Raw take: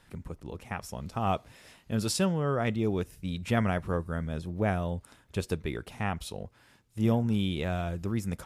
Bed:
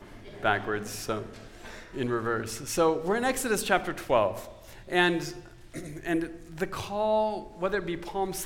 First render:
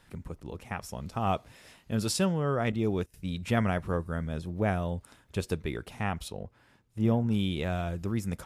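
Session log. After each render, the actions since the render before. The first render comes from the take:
0:02.72–0:03.14: noise gate −38 dBFS, range −17 dB
0:06.28–0:07.31: high-shelf EQ 2,800 Hz −8.5 dB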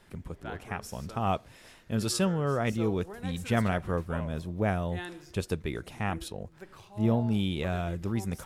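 mix in bed −17 dB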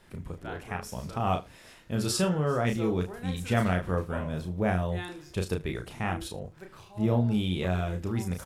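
double-tracking delay 33 ms −5 dB
single-tap delay 76 ms −20.5 dB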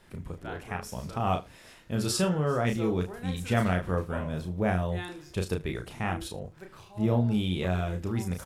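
no processing that can be heard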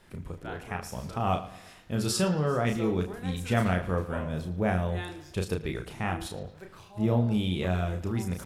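bucket-brigade delay 113 ms, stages 4,096, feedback 45%, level −16 dB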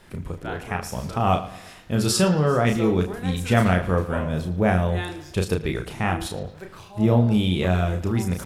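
level +7 dB

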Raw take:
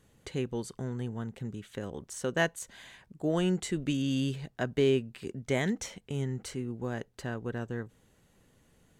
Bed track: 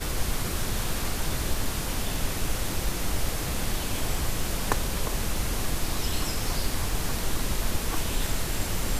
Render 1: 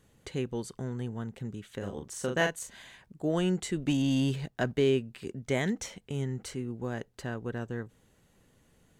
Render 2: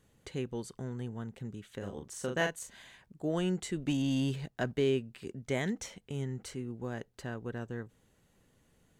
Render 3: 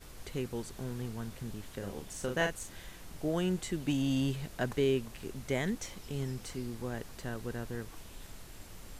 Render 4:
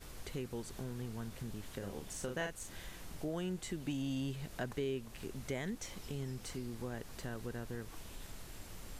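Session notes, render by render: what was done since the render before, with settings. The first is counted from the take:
0:01.78–0:02.82: double-tracking delay 40 ms −5 dB; 0:03.87–0:04.72: leveller curve on the samples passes 1
level −3.5 dB
mix in bed track −21 dB
downward compressor 2 to 1, threshold −41 dBFS, peak gain reduction 9 dB

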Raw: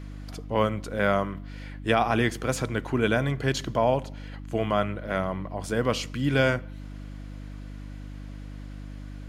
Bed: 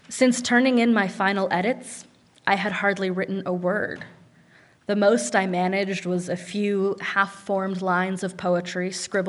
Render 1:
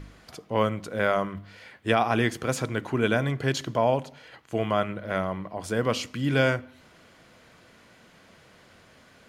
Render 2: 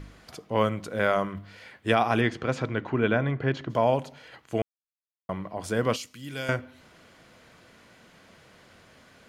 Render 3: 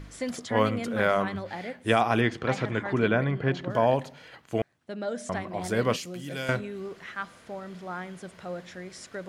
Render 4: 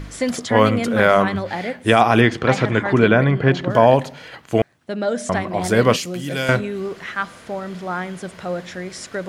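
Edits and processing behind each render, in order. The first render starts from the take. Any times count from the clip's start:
hum removal 50 Hz, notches 6
0:02.20–0:03.69: low-pass filter 4,300 Hz → 2,000 Hz; 0:04.62–0:05.29: silence; 0:05.96–0:06.49: first-order pre-emphasis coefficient 0.8
mix in bed −14 dB
level +10.5 dB; brickwall limiter −1 dBFS, peak gain reduction 3 dB

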